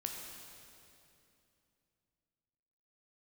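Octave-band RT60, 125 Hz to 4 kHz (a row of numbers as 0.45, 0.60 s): 3.6, 3.4, 2.9, 2.6, 2.5, 2.4 s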